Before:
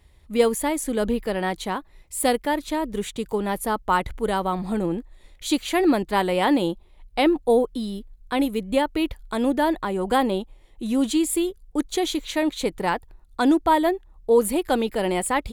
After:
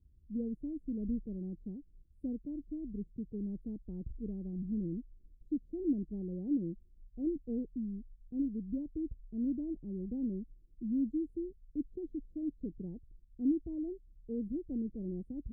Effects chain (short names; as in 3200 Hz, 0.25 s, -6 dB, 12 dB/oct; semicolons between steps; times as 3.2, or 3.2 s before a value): inverse Chebyshev low-pass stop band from 990 Hz, stop band 60 dB; gain -8.5 dB